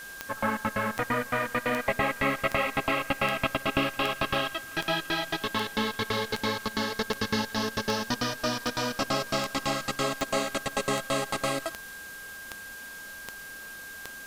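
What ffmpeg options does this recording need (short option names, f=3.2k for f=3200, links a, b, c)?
-af "adeclick=t=4,bandreject=f=1.6k:w=30,afwtdn=0.0045"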